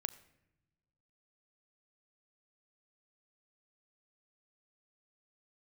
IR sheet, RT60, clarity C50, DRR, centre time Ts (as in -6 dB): 0.90 s, 17.0 dB, 10.0 dB, 6 ms